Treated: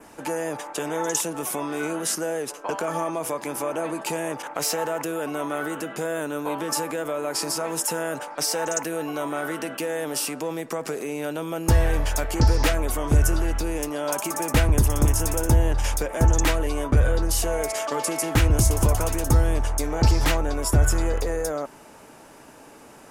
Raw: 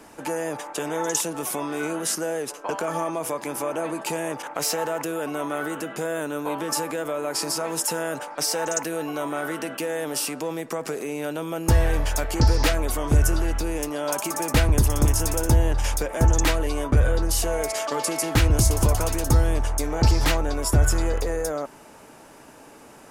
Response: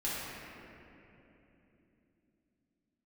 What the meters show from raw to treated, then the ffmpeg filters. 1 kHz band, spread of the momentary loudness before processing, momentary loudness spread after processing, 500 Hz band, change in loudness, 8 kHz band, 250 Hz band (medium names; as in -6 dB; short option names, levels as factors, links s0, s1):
0.0 dB, 9 LU, 9 LU, 0.0 dB, 0.0 dB, -0.5 dB, 0.0 dB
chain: -af "adynamicequalizer=threshold=0.00562:dfrequency=4400:dqfactor=2.1:tfrequency=4400:tqfactor=2.1:attack=5:release=100:ratio=0.375:range=2.5:mode=cutabove:tftype=bell"